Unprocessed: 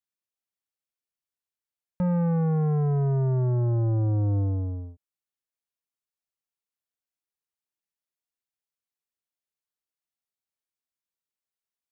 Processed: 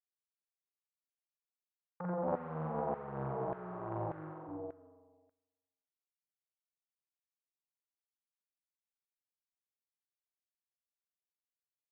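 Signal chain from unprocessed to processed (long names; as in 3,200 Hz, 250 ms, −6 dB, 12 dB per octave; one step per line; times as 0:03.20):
0:02.23–0:04.47: sub-harmonics by changed cycles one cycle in 2, muted
treble cut that deepens with the level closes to 360 Hz, closed at −27 dBFS
mains-hum notches 50/100 Hz
downward expander −26 dBFS
low-shelf EQ 190 Hz +9.5 dB
double-tracking delay 38 ms −5.5 dB
flutter between parallel walls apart 7.6 metres, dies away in 1.1 s
auto-filter high-pass saw down 1.7 Hz 750–1,500 Hz
high-frequency loss of the air 400 metres
highs frequency-modulated by the lows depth 0.29 ms
level +6.5 dB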